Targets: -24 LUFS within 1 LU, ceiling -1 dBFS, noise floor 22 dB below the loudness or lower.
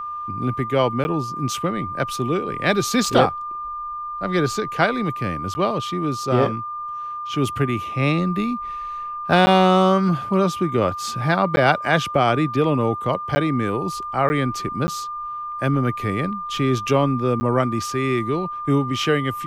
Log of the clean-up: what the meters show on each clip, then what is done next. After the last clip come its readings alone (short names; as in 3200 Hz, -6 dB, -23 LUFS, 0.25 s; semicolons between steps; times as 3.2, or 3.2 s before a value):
dropouts 8; longest dropout 10 ms; steady tone 1200 Hz; tone level -27 dBFS; loudness -21.5 LUFS; peak -1.5 dBFS; loudness target -24.0 LUFS
-> interpolate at 1.04/5.54/9.46/11.56/13.35/14.29/14.87/17.4, 10 ms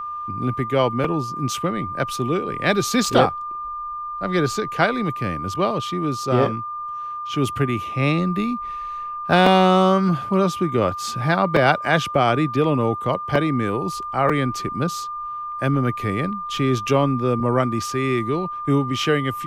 dropouts 0; steady tone 1200 Hz; tone level -27 dBFS
-> notch 1200 Hz, Q 30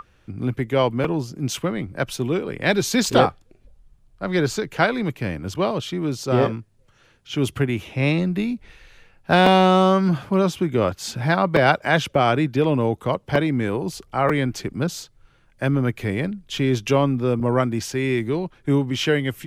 steady tone none; loudness -21.5 LUFS; peak -2.0 dBFS; loudness target -24.0 LUFS
-> gain -2.5 dB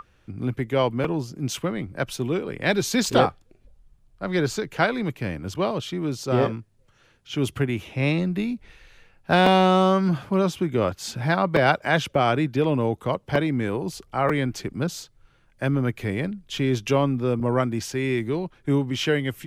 loudness -24.0 LUFS; peak -4.5 dBFS; noise floor -60 dBFS